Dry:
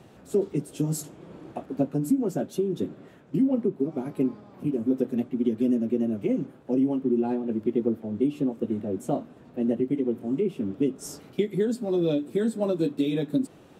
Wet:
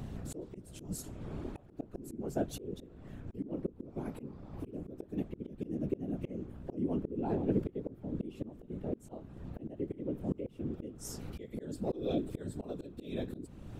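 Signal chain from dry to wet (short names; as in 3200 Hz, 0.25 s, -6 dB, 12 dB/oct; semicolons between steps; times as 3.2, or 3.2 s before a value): hum 60 Hz, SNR 15 dB; whisperiser; auto swell 0.518 s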